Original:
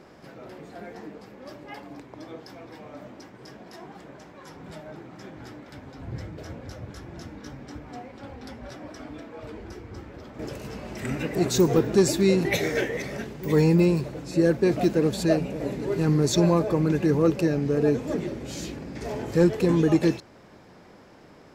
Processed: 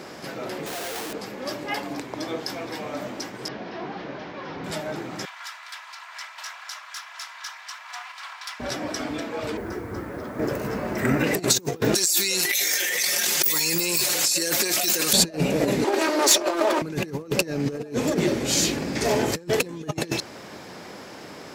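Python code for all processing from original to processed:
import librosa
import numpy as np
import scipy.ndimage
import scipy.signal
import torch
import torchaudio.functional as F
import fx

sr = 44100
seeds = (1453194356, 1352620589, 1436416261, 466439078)

y = fx.chain(x, sr, fx.highpass(hz=420.0, slope=12),
    fx.schmitt(flips_db=-51.0), at=(0.66, 1.13))
y = fx.chain(y, sr, fx.delta_mod(bps=32000, step_db=-58.0),
    fx.lowpass(hz=3700.0, slope=12), at=(3.48, 4.64))
y = fx.chain(y, sr, fx.lower_of_two(delay_ms=3.0),
    fx.steep_highpass(hz=930.0, slope=36),
    fx.high_shelf(hz=6800.0, db=-8.0), at=(5.25, 8.6))
y = fx.chain(y, sr, fx.band_shelf(hz=5500.0, db=-13.5, octaves=2.6),
    fx.notch(hz=810.0, q=17.0),
    fx.quant_dither(seeds[0], bits=12, dither='none'), at=(9.57, 11.24))
y = fx.chain(y, sr, fx.differentiator(),
    fx.comb(ms=5.6, depth=0.96),
    fx.env_flatten(amount_pct=100), at=(11.95, 15.13))
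y = fx.chain(y, sr, fx.lower_of_two(delay_ms=3.2),
    fx.highpass(hz=310.0, slope=24),
    fx.high_shelf(hz=9900.0, db=-7.5), at=(15.84, 16.82))
y = fx.highpass(y, sr, hz=180.0, slope=6)
y = fx.over_compress(y, sr, threshold_db=-30.0, ratio=-0.5)
y = fx.high_shelf(y, sr, hz=2700.0, db=8.5)
y = F.gain(torch.from_numpy(y), 5.5).numpy()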